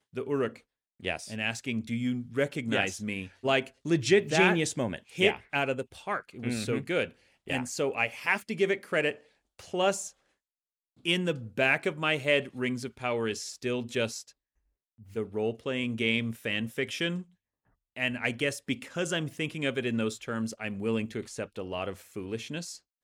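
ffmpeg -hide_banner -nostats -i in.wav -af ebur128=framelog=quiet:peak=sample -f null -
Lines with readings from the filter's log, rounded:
Integrated loudness:
  I:         -30.2 LUFS
  Threshold: -40.5 LUFS
Loudness range:
  LRA:         5.3 LU
  Threshold: -50.4 LUFS
  LRA low:   -32.7 LUFS
  LRA high:  -27.4 LUFS
Sample peak:
  Peak:       -7.4 dBFS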